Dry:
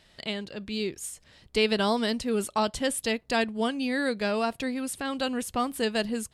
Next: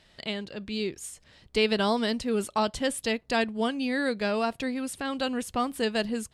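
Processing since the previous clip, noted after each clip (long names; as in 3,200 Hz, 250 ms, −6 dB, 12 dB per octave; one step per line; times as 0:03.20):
high-shelf EQ 11,000 Hz −8.5 dB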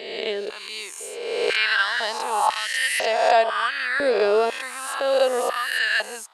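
peak hold with a rise ahead of every peak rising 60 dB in 1.45 s
high-pass on a step sequencer 2 Hz 420–2,000 Hz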